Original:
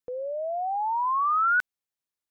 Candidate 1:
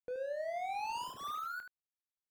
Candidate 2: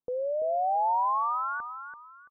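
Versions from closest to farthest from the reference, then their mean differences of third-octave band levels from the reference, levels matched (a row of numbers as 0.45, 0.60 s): 2, 1; 3.5, 15.5 dB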